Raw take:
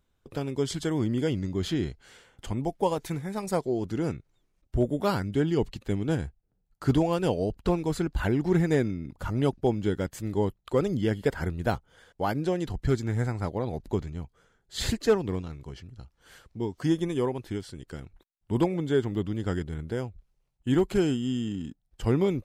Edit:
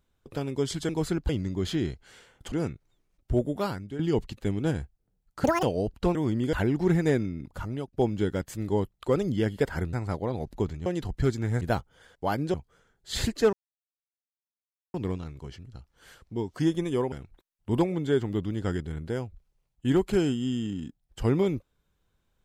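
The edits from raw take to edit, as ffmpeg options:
-filter_complex "[0:a]asplit=16[a][b][c][d][e][f][g][h][i][j][k][l][m][n][o][p];[a]atrim=end=0.892[q];[b]atrim=start=7.778:end=8.182[r];[c]atrim=start=1.268:end=2.502[s];[d]atrim=start=3.958:end=5.43,asetpts=PTS-STARTPTS,afade=t=out:st=0.862:d=0.61:silence=0.211349[t];[e]atrim=start=5.43:end=6.884,asetpts=PTS-STARTPTS,afade=t=in:d=0.004:c=hsin:silence=0.211349[u];[f]atrim=start=6.88:end=7.26,asetpts=PTS-STARTPTS,asetrate=88200,aresample=44100[v];[g]atrim=start=7.256:end=7.782[w];[h]atrim=start=0.888:end=1.272[x];[i]atrim=start=8.178:end=9.58,asetpts=PTS-STARTPTS,afade=t=out:st=0.952:d=0.45:silence=0.0794328[y];[j]atrim=start=9.58:end=11.582,asetpts=PTS-STARTPTS,afade=t=in:d=0.004:c=hsin:silence=0.0794328[z];[k]atrim=start=13.258:end=14.192[aa];[l]atrim=start=12.508:end=13.262[ab];[m]atrim=start=11.578:end=12.512[ac];[n]atrim=start=14.188:end=15.18,asetpts=PTS-STARTPTS,afade=t=out:st=0.988:d=0.004:c=hsin,apad=pad_dur=1.41[ad];[o]atrim=start=15.18:end=17.362,asetpts=PTS-STARTPTS,afade=t=in:d=0.004:c=hsin[ae];[p]atrim=start=17.938[af];[q][r]acrossfade=d=0.004:c1=hsin:c2=hsin[ag];[ag][s]acrossfade=d=0.004:c1=hsin:c2=hsin[ah];[t][u]concat=n=2:v=0:a=1[ai];[ah][ai]acrossfade=d=0.004:c1=hsin:c2=hsin[aj];[aj][v]acrossfade=d=0.004:c1=hsin:c2=hsin[ak];[ak][w]acrossfade=d=0.004:c1=hsin:c2=hsin[al];[al][x]acrossfade=d=0.004:c1=hsin:c2=hsin[am];[y][z]concat=n=2:v=0:a=1[an];[am][an]acrossfade=d=0.004:c1=hsin:c2=hsin[ao];[ao][aa]acrossfade=d=0.004:c1=hsin:c2=hsin[ap];[ap][ab]acrossfade=d=0.004:c1=hsin:c2=hsin[aq];[aq][ac]acrossfade=d=0.004:c1=hsin:c2=hsin[ar];[ad][ae]concat=n=2:v=0:a=1[as];[ar][as]acrossfade=d=0.004:c1=hsin:c2=hsin[at];[at][af]acrossfade=d=0.004:c1=hsin:c2=hsin"

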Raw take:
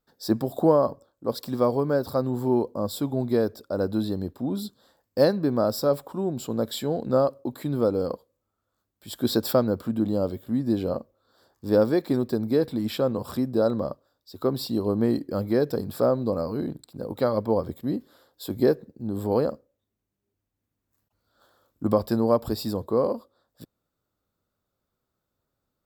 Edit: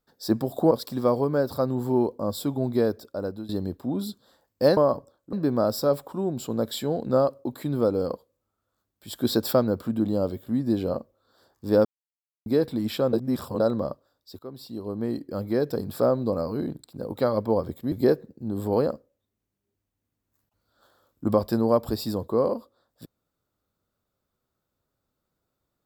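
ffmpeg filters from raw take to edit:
-filter_complex "[0:a]asplit=11[a][b][c][d][e][f][g][h][i][j][k];[a]atrim=end=0.712[l];[b]atrim=start=1.268:end=4.05,asetpts=PTS-STARTPTS,afade=t=out:st=2.062:d=0.72:c=qsin:silence=0.149624[m];[c]atrim=start=4.05:end=5.332,asetpts=PTS-STARTPTS,afade=t=in:d=0.004:c=hsin:silence=0.149624[n];[d]atrim=start=0.708:end=1.272[o];[e]atrim=start=5.328:end=11.85,asetpts=PTS-STARTPTS,afade=t=out:st=6.518:d=0.004:c=hsin[p];[f]atrim=start=11.85:end=12.46,asetpts=PTS-STARTPTS,volume=0[q];[g]atrim=start=12.46:end=13.132,asetpts=PTS-STARTPTS,afade=t=in:d=0.004:c=hsin[r];[h]atrim=start=13.128:end=13.602,asetpts=PTS-STARTPTS,areverse[s];[i]atrim=start=13.598:end=14.39,asetpts=PTS-STARTPTS,afade=t=out:st=0.788:d=0.004:c=hsin:silence=0.125893[t];[j]atrim=start=14.39:end=17.922,asetpts=PTS-STARTPTS,afade=t=in:d=1.54:silence=0.125893[u];[k]atrim=start=18.508[v];[m][n]concat=n=2:v=0:a=1[w];[l][w]acrossfade=d=0.004:c1=hsin:c2=hsin[x];[x][o]acrossfade=d=0.004:c1=hsin:c2=hsin[y];[p][q][r]concat=n=3:v=0:a=1[z];[y][z]acrossfade=d=0.004:c1=hsin:c2=hsin[aa];[aa][s]acrossfade=d=0.004:c1=hsin:c2=hsin[ab];[t][u]concat=n=2:v=0:a=1[ac];[ab][ac]acrossfade=d=0.004:c1=hsin:c2=hsin[ad];[ad][v]acrossfade=d=0.004:c1=hsin:c2=hsin"

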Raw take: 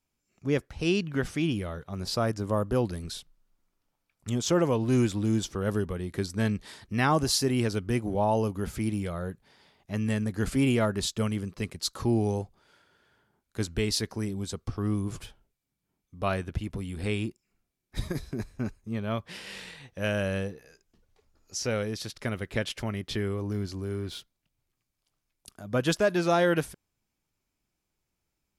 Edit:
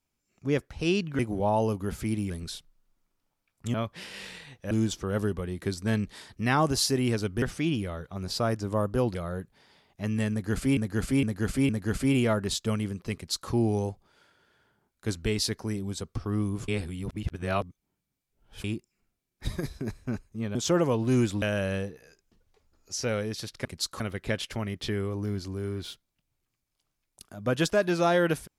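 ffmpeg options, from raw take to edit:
-filter_complex "[0:a]asplit=16[a][b][c][d][e][f][g][h][i][j][k][l][m][n][o][p];[a]atrim=end=1.192[q];[b]atrim=start=7.938:end=9.052[r];[c]atrim=start=2.918:end=4.362[s];[d]atrim=start=19.068:end=20.042[t];[e]atrim=start=5.228:end=7.942[u];[f]atrim=start=1.188:end=2.922[v];[g]atrim=start=9.048:end=10.672[w];[h]atrim=start=10.208:end=10.672[x];[i]atrim=start=10.208:end=10.672[y];[j]atrim=start=10.208:end=15.202[z];[k]atrim=start=15.198:end=17.162,asetpts=PTS-STARTPTS,areverse[aa];[l]atrim=start=17.158:end=19.072[ab];[m]atrim=start=4.358:end=5.232[ac];[n]atrim=start=20.038:end=22.272[ad];[o]atrim=start=11.668:end=12.022[ae];[p]atrim=start=22.268[af];[q][r]acrossfade=d=0.004:c1=hsin:c2=hsin[ag];[ag][s]acrossfade=d=0.004:c1=hsin:c2=hsin[ah];[ah][t]acrossfade=d=0.004:c1=hsin:c2=hsin[ai];[ai][u]acrossfade=d=0.004:c1=hsin:c2=hsin[aj];[aj][v]acrossfade=d=0.004:c1=hsin:c2=hsin[ak];[ak][w]acrossfade=d=0.004:c1=hsin:c2=hsin[al];[al][x]acrossfade=d=0.004:c1=hsin:c2=hsin[am];[am][y]acrossfade=d=0.004:c1=hsin:c2=hsin[an];[an][z]acrossfade=d=0.004:c1=hsin:c2=hsin[ao];[ao][aa]acrossfade=d=0.004:c1=hsin:c2=hsin[ap];[ap][ab]acrossfade=d=0.004:c1=hsin:c2=hsin[aq];[aq][ac]acrossfade=d=0.004:c1=hsin:c2=hsin[ar];[ar][ad]acrossfade=d=0.004:c1=hsin:c2=hsin[as];[as][ae]acrossfade=d=0.004:c1=hsin:c2=hsin[at];[at][af]acrossfade=d=0.004:c1=hsin:c2=hsin"

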